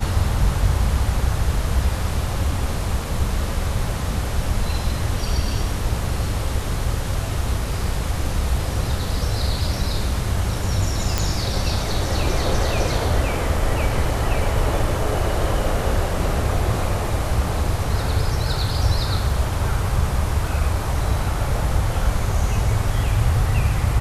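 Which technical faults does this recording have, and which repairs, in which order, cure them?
11.18 pop -5 dBFS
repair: de-click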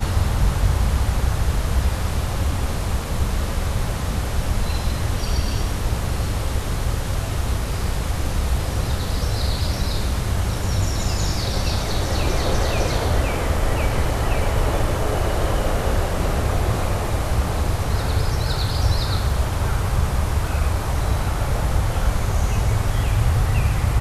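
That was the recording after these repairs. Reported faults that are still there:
none

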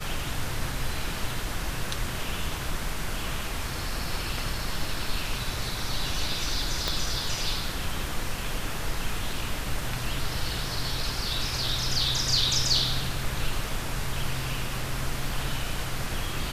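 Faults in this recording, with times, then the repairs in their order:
6.88 pop -11 dBFS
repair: de-click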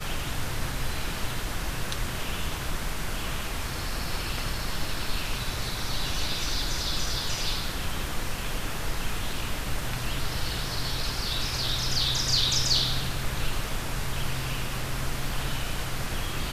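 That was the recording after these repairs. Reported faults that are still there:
6.88 pop

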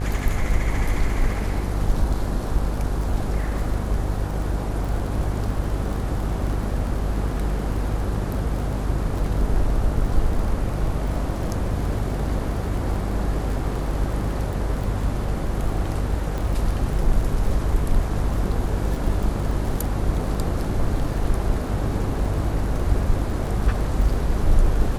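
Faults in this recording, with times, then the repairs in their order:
buzz 50 Hz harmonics 33 -26 dBFS
crackle 26/s -28 dBFS
16.38 pop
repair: de-click; de-hum 50 Hz, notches 33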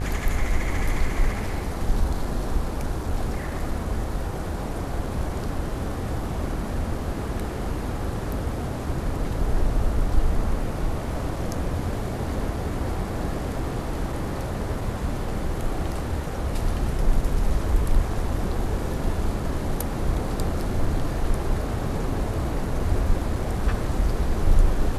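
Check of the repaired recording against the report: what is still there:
none

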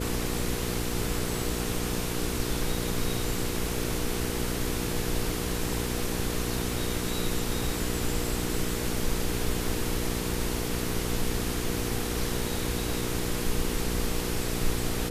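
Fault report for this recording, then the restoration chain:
hum 60 Hz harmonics 8 -33 dBFS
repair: de-hum 60 Hz, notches 8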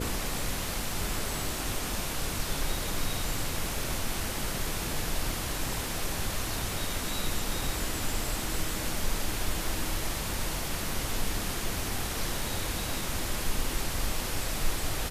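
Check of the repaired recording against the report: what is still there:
none

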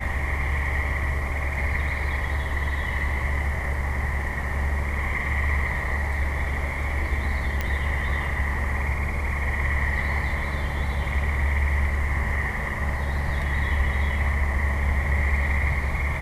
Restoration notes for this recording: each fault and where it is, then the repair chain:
7.61 pop -12 dBFS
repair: de-click

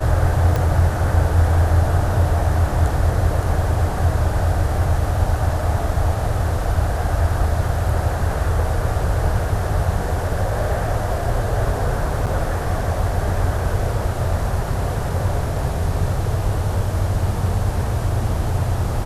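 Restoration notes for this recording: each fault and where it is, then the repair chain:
0.56 pop
12.26–12.27 gap 7.5 ms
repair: de-click; interpolate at 12.26, 7.5 ms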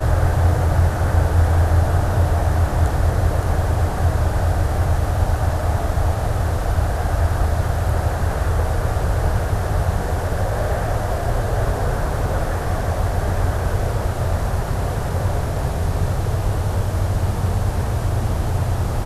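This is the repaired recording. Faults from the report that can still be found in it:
none

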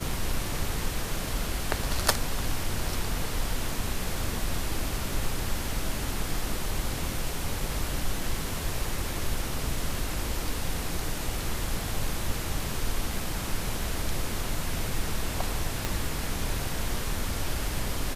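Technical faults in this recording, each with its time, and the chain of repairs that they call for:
15.85 pop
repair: de-click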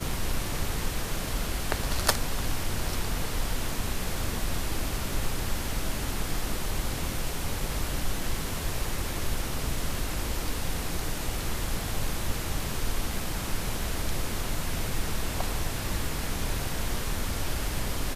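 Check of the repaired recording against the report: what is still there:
15.85 pop

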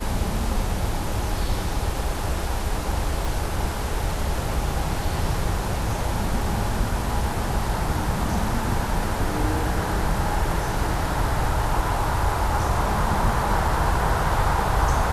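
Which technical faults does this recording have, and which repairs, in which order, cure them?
3.25 pop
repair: de-click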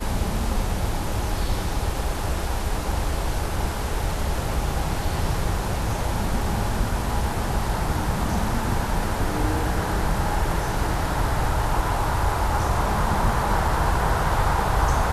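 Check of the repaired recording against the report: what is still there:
none

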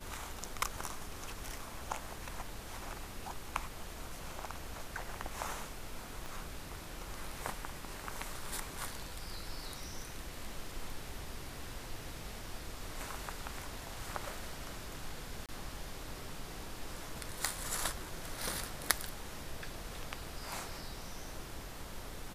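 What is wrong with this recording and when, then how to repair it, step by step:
6.26 pop
15.46–15.49 gap 27 ms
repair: de-click; interpolate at 15.46, 27 ms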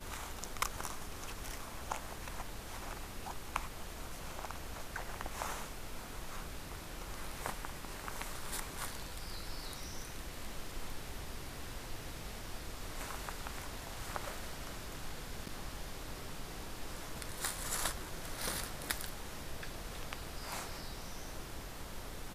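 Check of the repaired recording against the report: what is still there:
none

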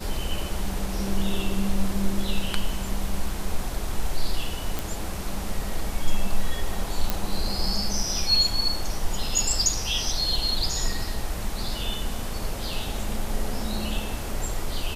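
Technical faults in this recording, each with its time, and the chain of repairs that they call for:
4.79 pop
7.1 pop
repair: de-click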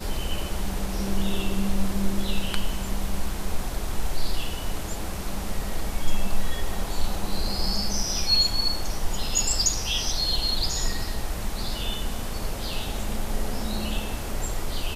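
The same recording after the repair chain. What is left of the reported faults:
none

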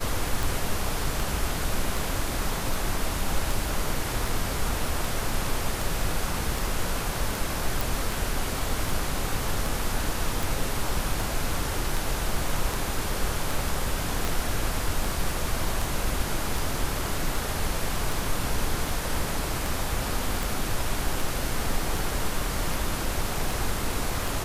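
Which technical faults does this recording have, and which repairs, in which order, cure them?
tick 78 rpm
7.81 pop
14.25 pop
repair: de-click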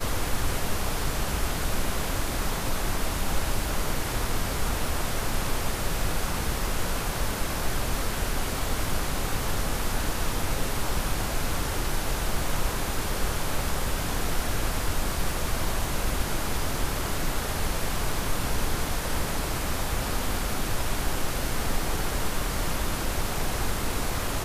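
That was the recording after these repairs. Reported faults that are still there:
14.25 pop

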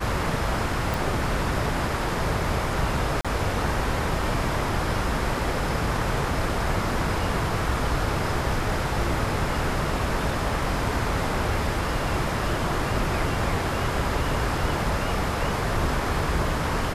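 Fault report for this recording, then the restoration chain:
0.94 pop
3.21–3.25 gap 36 ms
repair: de-click; interpolate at 3.21, 36 ms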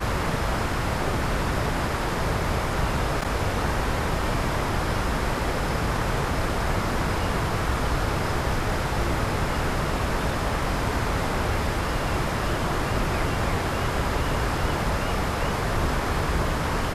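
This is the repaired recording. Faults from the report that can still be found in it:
none

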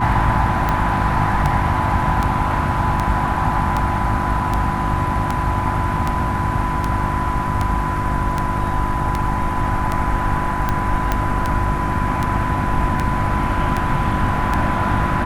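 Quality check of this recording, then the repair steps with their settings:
hum 50 Hz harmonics 7 -25 dBFS
tick 78 rpm -7 dBFS
tone 1000 Hz -23 dBFS
11.12 pop -5 dBFS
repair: de-click; de-hum 50 Hz, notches 7; notch 1000 Hz, Q 30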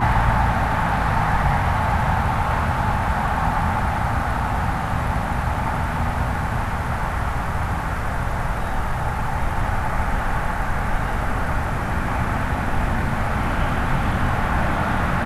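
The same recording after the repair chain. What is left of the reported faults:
none

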